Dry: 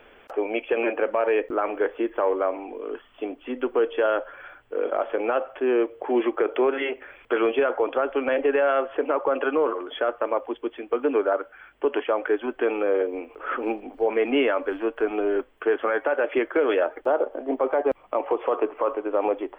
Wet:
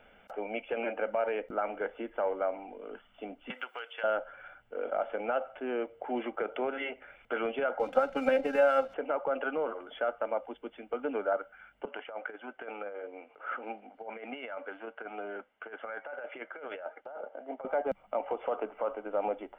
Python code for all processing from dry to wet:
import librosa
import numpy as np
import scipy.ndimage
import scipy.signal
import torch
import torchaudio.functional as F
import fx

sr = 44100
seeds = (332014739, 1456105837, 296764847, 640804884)

y = fx.chain(x, sr, fx.highpass(hz=1200.0, slope=12),
    fx.high_shelf(hz=2400.0, db=6.0),
    fx.band_squash(depth_pct=100), at=(3.5, 4.04))
y = fx.chain(y, sr, fx.comb(ms=3.8, depth=0.79),
    fx.transient(attack_db=4, sustain_db=-2),
    fx.backlash(play_db=-38.0), at=(7.79, 8.94))
y = fx.chain(y, sr, fx.highpass(hz=800.0, slope=6),
    fx.air_absorb(metres=280.0),
    fx.over_compress(threshold_db=-30.0, ratio=-0.5), at=(11.85, 17.65))
y = fx.peak_eq(y, sr, hz=200.0, db=10.5, octaves=0.49)
y = y + 0.56 * np.pad(y, (int(1.4 * sr / 1000.0), 0))[:len(y)]
y = y * librosa.db_to_amplitude(-9.0)